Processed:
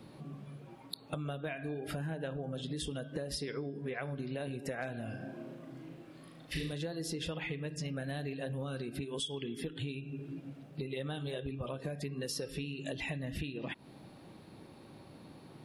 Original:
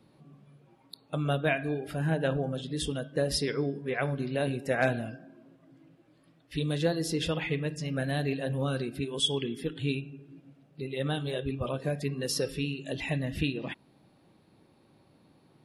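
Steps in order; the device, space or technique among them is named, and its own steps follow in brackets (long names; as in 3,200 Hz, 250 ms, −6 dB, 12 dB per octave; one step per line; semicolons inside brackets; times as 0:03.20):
serial compression, peaks first (downward compressor, threshold −39 dBFS, peak gain reduction 17 dB; downward compressor 2 to 1, threshold −48 dBFS, peak gain reduction 7 dB)
0:05.04–0:06.73: flutter between parallel walls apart 6.5 metres, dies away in 0.58 s
level +8.5 dB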